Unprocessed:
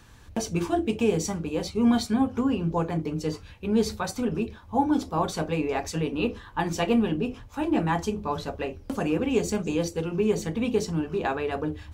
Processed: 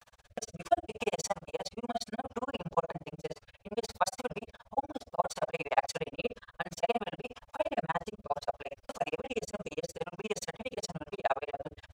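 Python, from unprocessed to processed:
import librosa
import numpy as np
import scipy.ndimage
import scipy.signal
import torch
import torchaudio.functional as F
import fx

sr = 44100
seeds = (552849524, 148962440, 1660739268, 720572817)

y = fx.low_shelf_res(x, sr, hz=460.0, db=-11.0, q=3.0)
y = fx.granulator(y, sr, seeds[0], grain_ms=43.0, per_s=17.0, spray_ms=19.0, spread_st=0)
y = fx.rotary_switch(y, sr, hz=0.65, then_hz=6.0, switch_at_s=10.38)
y = y * 10.0 ** (3.0 / 20.0)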